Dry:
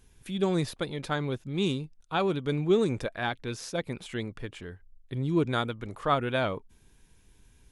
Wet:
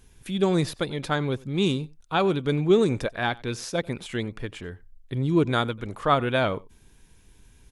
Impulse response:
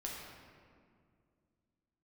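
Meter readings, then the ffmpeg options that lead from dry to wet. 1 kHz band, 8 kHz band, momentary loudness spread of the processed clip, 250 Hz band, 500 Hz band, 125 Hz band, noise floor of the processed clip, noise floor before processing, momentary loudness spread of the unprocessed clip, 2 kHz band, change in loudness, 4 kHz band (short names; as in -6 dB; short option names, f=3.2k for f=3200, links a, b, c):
+4.5 dB, +4.5 dB, 12 LU, +4.5 dB, +4.5 dB, +4.5 dB, -56 dBFS, -61 dBFS, 12 LU, +4.5 dB, +4.5 dB, +4.5 dB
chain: -af "aecho=1:1:92:0.0668,volume=4.5dB"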